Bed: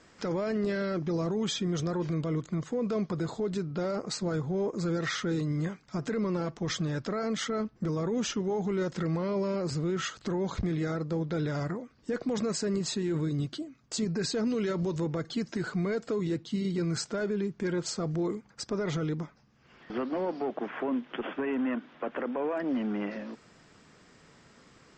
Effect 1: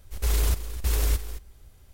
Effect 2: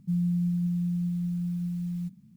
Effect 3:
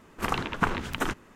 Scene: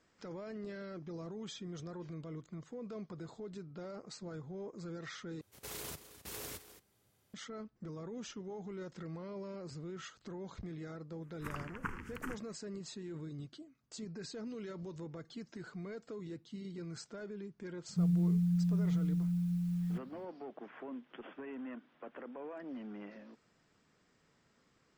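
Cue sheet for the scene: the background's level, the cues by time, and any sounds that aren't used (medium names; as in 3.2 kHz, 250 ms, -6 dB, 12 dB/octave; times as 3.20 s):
bed -14.5 dB
5.41 s: replace with 1 -12 dB + high-pass 120 Hz 24 dB/octave
11.22 s: add 3 -13 dB + static phaser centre 1.6 kHz, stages 4
17.89 s: add 2 -3 dB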